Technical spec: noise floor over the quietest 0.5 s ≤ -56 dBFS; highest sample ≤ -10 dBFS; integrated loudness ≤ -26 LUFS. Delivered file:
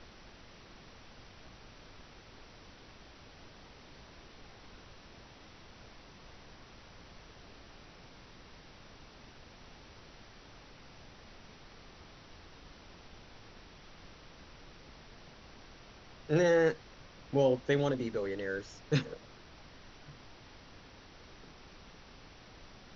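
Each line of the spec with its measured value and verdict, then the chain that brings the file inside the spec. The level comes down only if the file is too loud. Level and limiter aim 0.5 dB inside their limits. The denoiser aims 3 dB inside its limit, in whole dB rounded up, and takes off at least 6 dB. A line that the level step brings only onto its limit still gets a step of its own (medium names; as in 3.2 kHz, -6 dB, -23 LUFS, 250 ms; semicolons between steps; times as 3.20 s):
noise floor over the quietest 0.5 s -54 dBFS: fail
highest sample -16.0 dBFS: pass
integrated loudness -31.5 LUFS: pass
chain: noise reduction 6 dB, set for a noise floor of -54 dBFS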